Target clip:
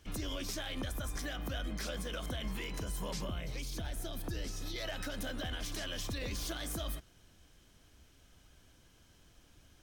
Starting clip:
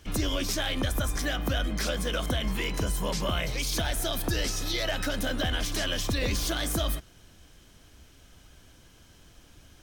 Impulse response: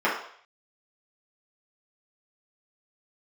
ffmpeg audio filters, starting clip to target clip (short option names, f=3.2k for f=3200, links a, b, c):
-filter_complex "[0:a]asettb=1/sr,asplit=3[a][b][c];[a]atrim=end=3.194[d];[b]atrim=start=3.19:end=4.76,asetpts=PTS-STARTPTS,afade=t=in:d=0.004:c=qsin,afade=t=out:st=1.566:d=0.004:c=qsin,acrossover=split=430[e][f];[f]acompressor=threshold=-36dB:ratio=6[g];[e][g]amix=inputs=2:normalize=0[h];[c]atrim=start=4.756[i];[d][h]acrossfade=d=0.004:c1=hsin:c2=qsin[j];[j][i]acrossfade=d=0.004:c1=qsin:c2=hsin,alimiter=limit=-21dB:level=0:latency=1:release=71,volume=-8dB"